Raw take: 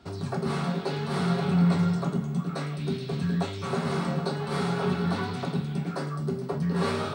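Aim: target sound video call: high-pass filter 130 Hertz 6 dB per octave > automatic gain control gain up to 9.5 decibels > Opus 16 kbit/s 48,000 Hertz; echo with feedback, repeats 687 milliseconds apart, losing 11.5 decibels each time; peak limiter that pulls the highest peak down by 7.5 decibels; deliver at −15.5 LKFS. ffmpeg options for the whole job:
ffmpeg -i in.wav -af "alimiter=limit=-21dB:level=0:latency=1,highpass=frequency=130:poles=1,aecho=1:1:687|1374|2061:0.266|0.0718|0.0194,dynaudnorm=maxgain=9.5dB,volume=16dB" -ar 48000 -c:a libopus -b:a 16k out.opus

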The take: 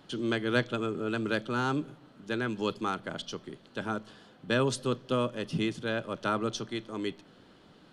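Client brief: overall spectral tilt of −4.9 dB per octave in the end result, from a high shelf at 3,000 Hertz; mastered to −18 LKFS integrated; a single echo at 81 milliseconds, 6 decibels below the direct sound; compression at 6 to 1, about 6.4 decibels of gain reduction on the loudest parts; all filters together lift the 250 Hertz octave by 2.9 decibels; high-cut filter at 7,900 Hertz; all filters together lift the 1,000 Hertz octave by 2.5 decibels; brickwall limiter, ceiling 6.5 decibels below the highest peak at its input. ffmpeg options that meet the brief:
ffmpeg -i in.wav -af "lowpass=7900,equalizer=frequency=250:width_type=o:gain=3.5,equalizer=frequency=1000:width_type=o:gain=4,highshelf=frequency=3000:gain=-4,acompressor=threshold=-27dB:ratio=6,alimiter=level_in=0.5dB:limit=-24dB:level=0:latency=1,volume=-0.5dB,aecho=1:1:81:0.501,volume=17dB" out.wav

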